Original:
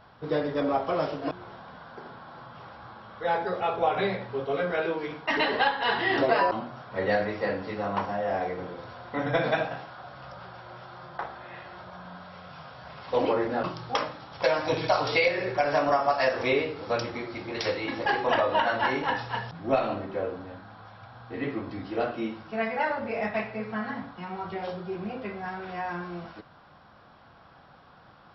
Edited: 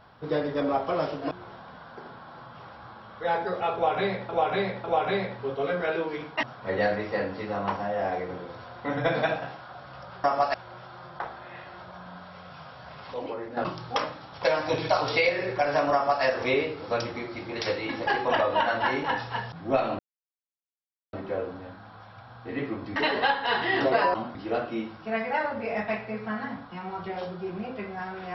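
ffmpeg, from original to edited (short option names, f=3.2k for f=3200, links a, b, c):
-filter_complex "[0:a]asplit=11[a][b][c][d][e][f][g][h][i][j][k];[a]atrim=end=4.292[l];[b]atrim=start=3.738:end=4.292[m];[c]atrim=start=3.738:end=5.332[n];[d]atrim=start=6.718:end=10.532[o];[e]atrim=start=15.918:end=16.222[p];[f]atrim=start=10.528:end=13.132[q];[g]atrim=start=13.128:end=13.562,asetpts=PTS-STARTPTS,volume=-9.5dB[r];[h]atrim=start=13.558:end=19.98,asetpts=PTS-STARTPTS,afade=t=out:st=6.418:d=0.004:c=hsin,apad=pad_dur=1.14[s];[i]atrim=start=19.98:end=21.812,asetpts=PTS-STARTPTS,afade=t=in:d=0.004:c=hsin[t];[j]atrim=start=5.328:end=6.722[u];[k]atrim=start=21.808[v];[l][m]acrossfade=d=0.004:c1=hsin:c2=hsin[w];[w][n]acrossfade=d=0.004:c1=hsin:c2=hsin[x];[x][o]acrossfade=d=0.004:c1=hsin:c2=hsin[y];[y][p]acrossfade=d=0.004:c1=hsin:c2=hsin[z];[z][q]acrossfade=d=0.004:c1=hsin:c2=hsin[aa];[aa][r]acrossfade=d=0.004:c1=hsin:c2=hsin[ab];[s][t]concat=n=2:v=0:a=1[ac];[ab][ac]acrossfade=d=0.004:c1=hsin:c2=hsin[ad];[ad][u]acrossfade=d=0.004:c1=hsin:c2=hsin[ae];[ae][v]acrossfade=d=0.004:c1=hsin:c2=hsin"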